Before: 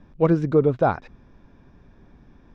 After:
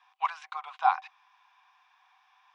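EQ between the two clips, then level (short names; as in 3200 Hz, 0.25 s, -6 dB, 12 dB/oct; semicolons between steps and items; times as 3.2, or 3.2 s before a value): rippled Chebyshev high-pass 740 Hz, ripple 9 dB; +6.0 dB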